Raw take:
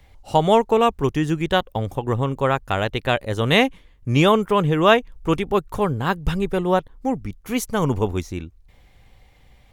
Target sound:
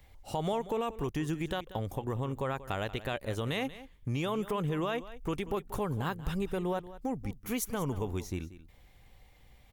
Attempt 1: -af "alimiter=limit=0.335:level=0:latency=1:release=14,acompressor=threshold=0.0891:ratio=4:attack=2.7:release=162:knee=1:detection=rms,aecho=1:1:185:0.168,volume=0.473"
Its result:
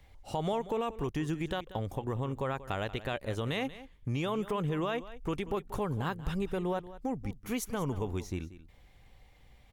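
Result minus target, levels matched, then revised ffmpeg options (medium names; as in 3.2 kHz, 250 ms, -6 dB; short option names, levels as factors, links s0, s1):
8 kHz band -3.0 dB
-af "alimiter=limit=0.335:level=0:latency=1:release=14,acompressor=threshold=0.0891:ratio=4:attack=2.7:release=162:knee=1:detection=rms,highshelf=f=11000:g=10,aecho=1:1:185:0.168,volume=0.473"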